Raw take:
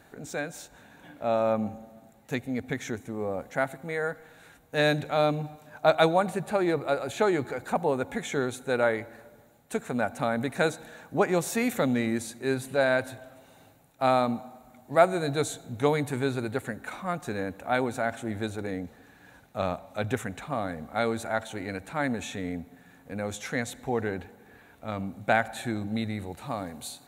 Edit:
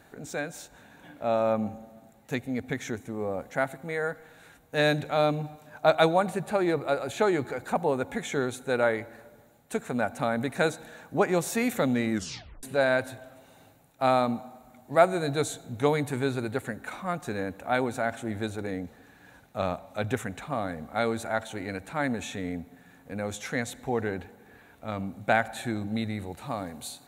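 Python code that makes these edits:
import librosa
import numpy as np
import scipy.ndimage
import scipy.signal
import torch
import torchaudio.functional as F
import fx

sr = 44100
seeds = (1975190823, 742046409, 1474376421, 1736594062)

y = fx.edit(x, sr, fx.tape_stop(start_s=12.12, length_s=0.51), tone=tone)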